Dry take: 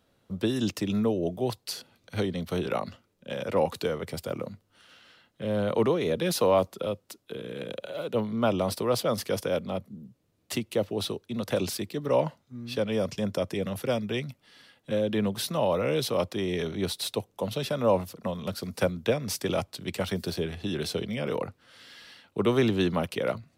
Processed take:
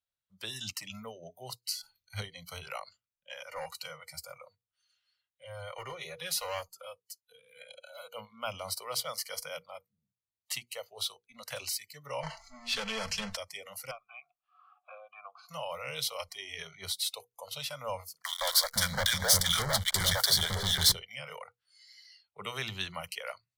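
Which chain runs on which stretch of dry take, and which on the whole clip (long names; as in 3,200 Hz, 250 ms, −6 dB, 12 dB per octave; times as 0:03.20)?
0:01.75–0:02.22: low-shelf EQ 230 Hz +6.5 dB + level that may fall only so fast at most 84 dB per second
0:03.46–0:07.25: gain into a clipping stage and back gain 18 dB + notch comb filter 220 Hz
0:12.23–0:13.37: power curve on the samples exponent 0.5 + high-frequency loss of the air 53 metres + comb filter 4.5 ms, depth 58%
0:13.91–0:15.49: formant filter a + parametric band 1,300 Hz +14 dB 1.2 octaves + multiband upward and downward compressor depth 70%
0:18.22–0:20.92: three-band delay without the direct sound highs, mids, lows 160/510 ms, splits 460/1,400 Hz + leveller curve on the samples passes 5 + Butterworth band-reject 2,600 Hz, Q 2.9
whole clip: mains-hum notches 60/120/180/240/300/360/420/480 Hz; noise reduction from a noise print of the clip's start 22 dB; guitar amp tone stack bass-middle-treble 10-0-10; level +1.5 dB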